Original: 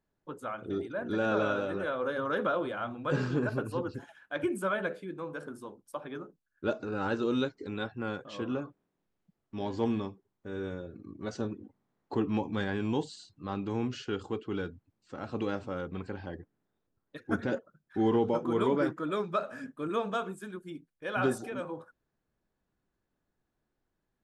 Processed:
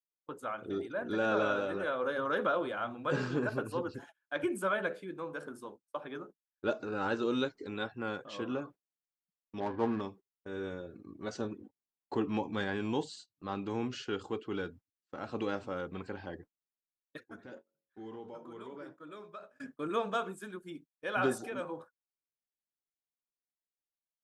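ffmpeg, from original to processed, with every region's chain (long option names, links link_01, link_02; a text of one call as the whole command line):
ffmpeg -i in.wav -filter_complex "[0:a]asettb=1/sr,asplit=3[link_01][link_02][link_03];[link_01]atrim=end=9.604[link_04];[link_02]atrim=start=9.6:end=10.01,asetpts=PTS-STARTPTS,afade=type=in:duration=0.004:curve=qsin,afade=type=out:start_time=0.406:duration=0.004:curve=qsin,lowpass=frequency=1600:width_type=q:width=3,adynamicsmooth=sensitivity=7.5:basefreq=990[link_05];[link_03]atrim=start=10.006[link_06];[link_04][link_05]acrossfade=duration=0.004:curve1=hsin:curve2=qsin[link_07];[link_07][link_06]acrossfade=duration=0.004:curve1=qsin:curve2=hsin,asettb=1/sr,asplit=3[link_08][link_09][link_10];[link_08]atrim=end=17.204[link_11];[link_09]atrim=start=17.2:end=19.6,asetpts=PTS-STARTPTS,afade=type=in:duration=0.004:curve=qsin,afade=type=out:start_time=2.396:duration=0.004:curve=qsin,bandreject=frequency=45.83:width_type=h:width=4,bandreject=frequency=91.66:width_type=h:width=4,bandreject=frequency=137.49:width_type=h:width=4,bandreject=frequency=183.32:width_type=h:width=4,bandreject=frequency=229.15:width_type=h:width=4,bandreject=frequency=274.98:width_type=h:width=4,bandreject=frequency=320.81:width_type=h:width=4,bandreject=frequency=366.64:width_type=h:width=4,bandreject=frequency=412.47:width_type=h:width=4,bandreject=frequency=458.3:width_type=h:width=4,bandreject=frequency=504.13:width_type=h:width=4,bandreject=frequency=549.96:width_type=h:width=4,bandreject=frequency=595.79:width_type=h:width=4,bandreject=frequency=641.62:width_type=h:width=4,bandreject=frequency=687.45:width_type=h:width=4,bandreject=frequency=733.28:width_type=h:width=4,bandreject=frequency=779.11:width_type=h:width=4,bandreject=frequency=824.94:width_type=h:width=4,bandreject=frequency=870.77:width_type=h:width=4,bandreject=frequency=916.6:width_type=h:width=4,bandreject=frequency=962.43:width_type=h:width=4,bandreject=frequency=1008.26:width_type=h:width=4,bandreject=frequency=1054.09:width_type=h:width=4,acompressor=threshold=-55dB:ratio=2:attack=3.2:release=140:knee=1:detection=peak,aecho=1:1:91:0.106,atrim=end_sample=105840[link_12];[link_10]atrim=start=19.596[link_13];[link_11][link_12]acrossfade=duration=0.004:curve1=hsin:curve2=qsin[link_14];[link_14][link_13]acrossfade=duration=0.004:curve1=qsin:curve2=hsin,agate=range=-27dB:threshold=-48dB:ratio=16:detection=peak,lowshelf=frequency=210:gain=-8" out.wav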